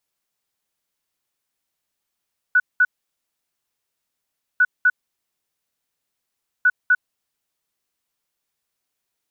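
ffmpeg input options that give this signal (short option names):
-f lavfi -i "aevalsrc='0.282*sin(2*PI*1480*t)*clip(min(mod(mod(t,2.05),0.25),0.05-mod(mod(t,2.05),0.25))/0.005,0,1)*lt(mod(t,2.05),0.5)':d=6.15:s=44100"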